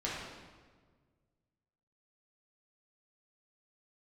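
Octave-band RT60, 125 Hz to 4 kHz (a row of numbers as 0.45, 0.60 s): 2.3, 1.9, 1.7, 1.4, 1.2, 1.1 s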